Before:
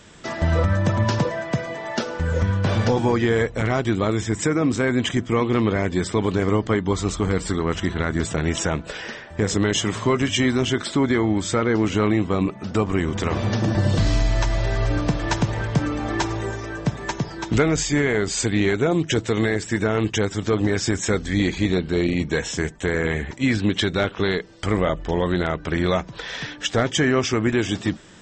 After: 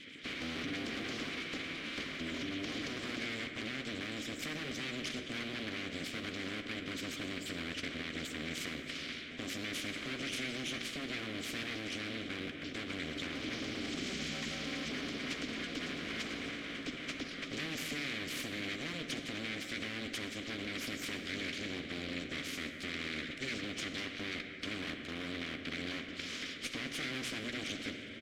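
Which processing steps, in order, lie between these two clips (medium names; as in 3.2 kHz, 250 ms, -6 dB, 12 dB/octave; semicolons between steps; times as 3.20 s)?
coarse spectral quantiser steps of 30 dB; high-pass 64 Hz 12 dB/octave; peak limiter -16 dBFS, peak gain reduction 8.5 dB; in parallel at -12 dB: decimation with a swept rate 25×, swing 60% 2.2 Hz; on the sum: full-wave rectifier; vowel filter i; doubling 13 ms -11 dB; on a send at -10 dB: reverberation RT60 2.6 s, pre-delay 38 ms; on the sum: spectrum-flattening compressor 2:1; trim +1 dB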